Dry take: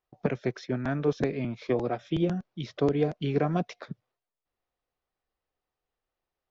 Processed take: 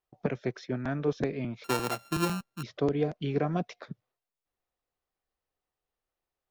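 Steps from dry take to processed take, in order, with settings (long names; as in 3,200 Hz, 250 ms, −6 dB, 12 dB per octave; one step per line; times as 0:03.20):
0:01.64–0:02.63: samples sorted by size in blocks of 32 samples
level −2.5 dB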